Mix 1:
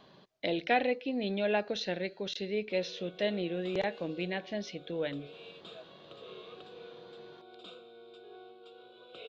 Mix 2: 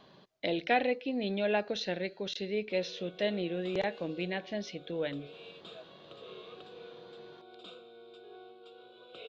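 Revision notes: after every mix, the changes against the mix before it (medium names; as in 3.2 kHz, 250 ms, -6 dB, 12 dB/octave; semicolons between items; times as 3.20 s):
no change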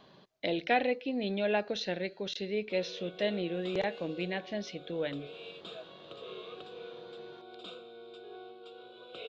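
background +3.5 dB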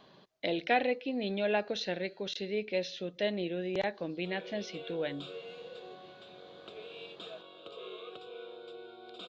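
background: entry +1.55 s; master: add bass shelf 160 Hz -3.5 dB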